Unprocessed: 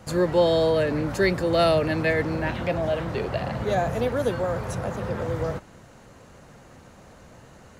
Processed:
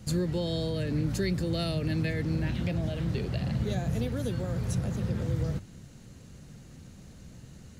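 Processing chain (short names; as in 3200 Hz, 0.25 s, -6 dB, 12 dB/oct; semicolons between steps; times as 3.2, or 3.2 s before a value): bell 580 Hz -3 dB 0.85 oct; notches 50/100 Hz; compressor 2:1, threshold -27 dBFS, peak gain reduction 6 dB; EQ curve 170 Hz 0 dB, 1000 Hz -18 dB, 4100 Hz -4 dB; gain +4 dB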